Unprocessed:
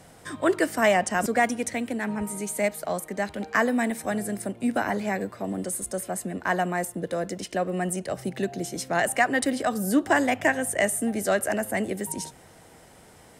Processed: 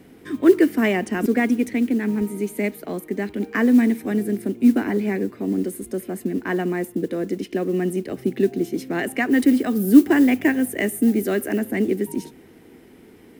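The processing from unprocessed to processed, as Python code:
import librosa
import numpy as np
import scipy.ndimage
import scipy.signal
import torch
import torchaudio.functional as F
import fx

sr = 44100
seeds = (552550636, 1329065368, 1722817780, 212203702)

y = fx.curve_eq(x, sr, hz=(150.0, 250.0, 410.0, 580.0, 1000.0, 1400.0, 2300.0, 8200.0, 13000.0), db=(0, 13, 11, -6, -4, -3, 3, -11, 2))
y = fx.mod_noise(y, sr, seeds[0], snr_db=31)
y = fx.high_shelf(y, sr, hz=11000.0, db=8.5, at=(9.31, 11.59))
y = y * librosa.db_to_amplitude(-1.0)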